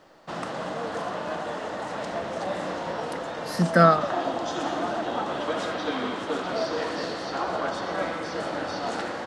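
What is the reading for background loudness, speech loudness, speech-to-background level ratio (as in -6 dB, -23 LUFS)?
-30.0 LUFS, -20.5 LUFS, 9.5 dB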